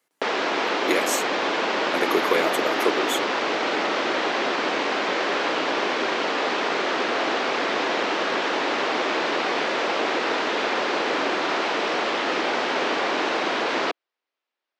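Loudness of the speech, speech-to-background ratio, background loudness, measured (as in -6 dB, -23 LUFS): -27.0 LUFS, -3.5 dB, -23.5 LUFS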